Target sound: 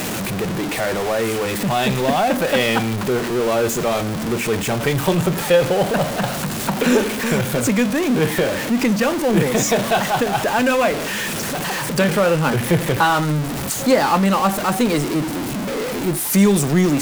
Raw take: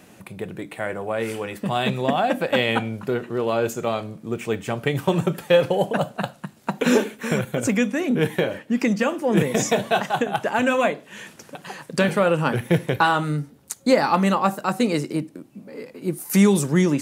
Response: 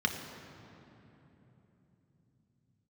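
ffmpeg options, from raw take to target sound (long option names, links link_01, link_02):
-af "aeval=exprs='val(0)+0.5*0.112*sgn(val(0))':channel_layout=same"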